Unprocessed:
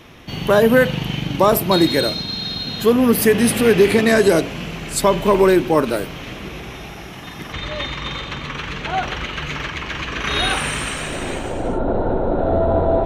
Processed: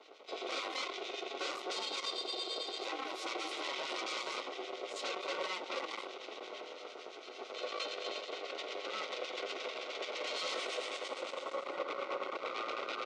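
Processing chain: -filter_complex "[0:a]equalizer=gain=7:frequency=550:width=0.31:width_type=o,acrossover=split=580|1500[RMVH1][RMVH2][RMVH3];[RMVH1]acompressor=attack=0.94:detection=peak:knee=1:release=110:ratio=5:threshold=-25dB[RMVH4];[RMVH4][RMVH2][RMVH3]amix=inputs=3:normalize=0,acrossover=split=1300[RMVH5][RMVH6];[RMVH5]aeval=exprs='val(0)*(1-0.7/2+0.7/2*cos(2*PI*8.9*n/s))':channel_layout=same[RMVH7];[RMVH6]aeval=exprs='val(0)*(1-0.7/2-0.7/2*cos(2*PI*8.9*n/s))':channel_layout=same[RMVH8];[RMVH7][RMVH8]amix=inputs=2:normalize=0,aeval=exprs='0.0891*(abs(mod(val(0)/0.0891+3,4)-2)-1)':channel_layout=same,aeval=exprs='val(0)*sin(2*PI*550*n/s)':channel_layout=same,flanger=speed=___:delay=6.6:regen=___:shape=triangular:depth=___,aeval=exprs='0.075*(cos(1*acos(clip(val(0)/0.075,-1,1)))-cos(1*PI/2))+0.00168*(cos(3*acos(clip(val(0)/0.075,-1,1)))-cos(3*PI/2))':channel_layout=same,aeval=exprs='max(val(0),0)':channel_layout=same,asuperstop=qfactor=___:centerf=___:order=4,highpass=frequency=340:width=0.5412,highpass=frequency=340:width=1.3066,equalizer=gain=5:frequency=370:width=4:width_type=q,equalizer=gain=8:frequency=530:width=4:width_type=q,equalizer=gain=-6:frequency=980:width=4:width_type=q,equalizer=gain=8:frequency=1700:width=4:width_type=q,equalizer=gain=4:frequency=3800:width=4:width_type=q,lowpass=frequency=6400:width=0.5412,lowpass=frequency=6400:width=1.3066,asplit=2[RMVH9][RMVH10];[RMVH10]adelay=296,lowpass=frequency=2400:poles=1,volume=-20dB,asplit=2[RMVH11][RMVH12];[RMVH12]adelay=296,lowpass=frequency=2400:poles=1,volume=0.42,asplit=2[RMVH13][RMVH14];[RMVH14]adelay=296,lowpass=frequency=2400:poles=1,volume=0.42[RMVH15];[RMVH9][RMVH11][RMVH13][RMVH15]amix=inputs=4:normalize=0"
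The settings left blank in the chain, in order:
0.59, -65, 1.7, 3.4, 1700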